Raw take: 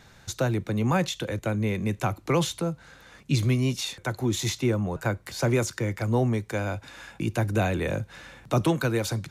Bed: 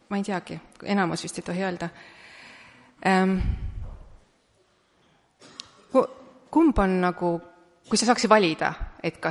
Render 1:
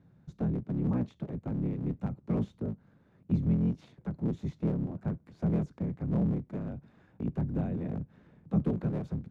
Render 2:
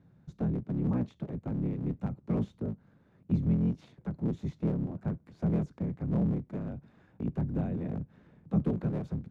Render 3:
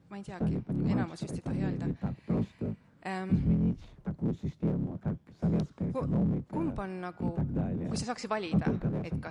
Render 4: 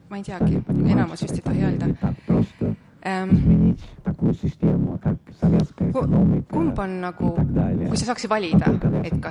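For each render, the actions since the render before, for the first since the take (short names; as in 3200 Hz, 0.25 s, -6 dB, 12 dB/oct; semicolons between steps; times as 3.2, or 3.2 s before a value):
cycle switcher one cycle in 3, inverted; band-pass 170 Hz, Q 1.6
nothing audible
add bed -15.5 dB
gain +11 dB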